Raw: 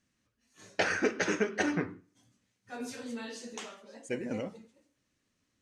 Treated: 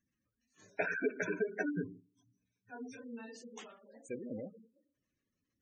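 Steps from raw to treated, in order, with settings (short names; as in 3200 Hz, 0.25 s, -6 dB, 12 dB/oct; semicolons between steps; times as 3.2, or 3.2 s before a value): 0.71–3 ripple EQ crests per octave 1.6, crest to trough 8 dB; spectral gate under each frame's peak -15 dB strong; gain -6.5 dB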